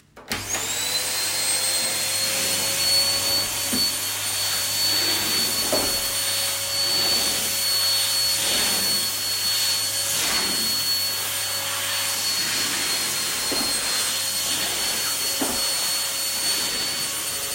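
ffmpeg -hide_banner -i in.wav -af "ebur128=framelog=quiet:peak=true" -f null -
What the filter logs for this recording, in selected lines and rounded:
Integrated loudness:
  I:         -20.5 LUFS
  Threshold: -30.5 LUFS
Loudness range:
  LRA:         2.0 LU
  Threshold: -40.2 LUFS
  LRA low:   -21.3 LUFS
  LRA high:  -19.3 LUFS
True peak:
  Peak:       -8.6 dBFS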